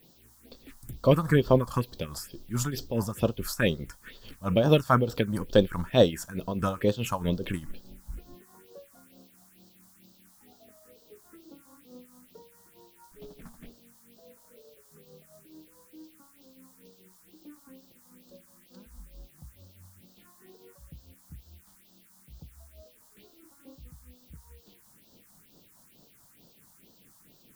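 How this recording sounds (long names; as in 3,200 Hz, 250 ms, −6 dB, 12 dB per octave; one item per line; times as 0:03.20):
tremolo triangle 4.7 Hz, depth 80%
a quantiser's noise floor 10 bits, dither triangular
phaser sweep stages 4, 2.2 Hz, lowest notch 400–2,200 Hz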